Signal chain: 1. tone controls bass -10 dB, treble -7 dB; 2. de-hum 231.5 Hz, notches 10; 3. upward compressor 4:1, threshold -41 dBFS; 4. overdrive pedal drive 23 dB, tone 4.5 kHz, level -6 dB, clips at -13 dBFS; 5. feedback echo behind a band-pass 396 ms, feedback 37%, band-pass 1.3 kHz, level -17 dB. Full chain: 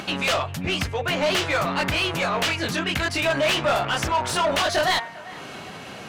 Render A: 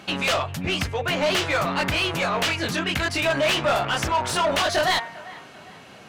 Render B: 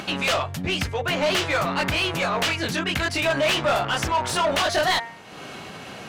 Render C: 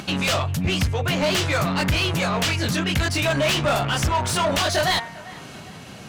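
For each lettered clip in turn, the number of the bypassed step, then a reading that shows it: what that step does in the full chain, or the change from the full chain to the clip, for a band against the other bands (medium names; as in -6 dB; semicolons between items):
3, momentary loudness spread change -10 LU; 5, momentary loudness spread change +1 LU; 1, loudness change +1.0 LU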